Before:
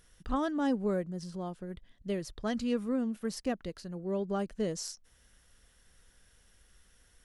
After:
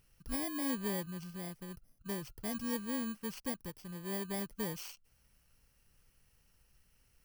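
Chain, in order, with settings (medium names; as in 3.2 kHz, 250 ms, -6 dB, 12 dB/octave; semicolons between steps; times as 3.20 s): bit-reversed sample order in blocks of 32 samples; peaking EQ 130 Hz +8 dB 0.63 oct; trim -6.5 dB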